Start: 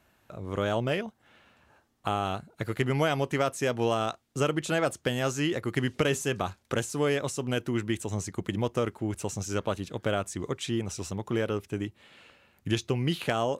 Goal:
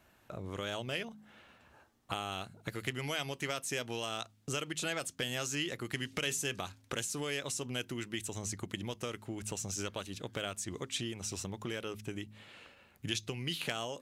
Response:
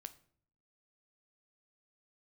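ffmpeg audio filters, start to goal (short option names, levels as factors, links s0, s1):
-filter_complex "[0:a]bandreject=f=52.99:t=h:w=4,bandreject=f=105.98:t=h:w=4,bandreject=f=158.97:t=h:w=4,bandreject=f=211.96:t=h:w=4,bandreject=f=264.95:t=h:w=4,acrossover=split=2100[s0][s1];[s0]acompressor=threshold=0.0126:ratio=5[s2];[s2][s1]amix=inputs=2:normalize=0,atempo=0.97"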